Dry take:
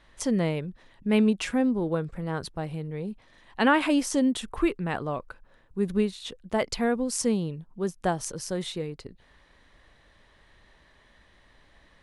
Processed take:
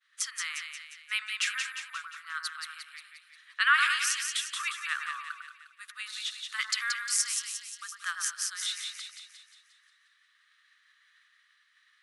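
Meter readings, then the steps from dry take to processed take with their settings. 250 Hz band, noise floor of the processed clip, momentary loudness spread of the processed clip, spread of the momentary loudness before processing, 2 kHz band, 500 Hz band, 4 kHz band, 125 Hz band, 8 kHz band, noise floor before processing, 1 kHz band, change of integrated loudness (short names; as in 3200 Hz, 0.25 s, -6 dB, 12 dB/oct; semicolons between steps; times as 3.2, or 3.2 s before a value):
under -40 dB, -68 dBFS, 18 LU, 13 LU, +5.0 dB, under -40 dB, +5.5 dB, under -40 dB, +5.0 dB, -60 dBFS, -3.5 dB, -3.0 dB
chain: Chebyshev high-pass 1200 Hz, order 6; expander -56 dBFS; split-band echo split 1700 Hz, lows 0.101 s, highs 0.177 s, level -5 dB; gain +4 dB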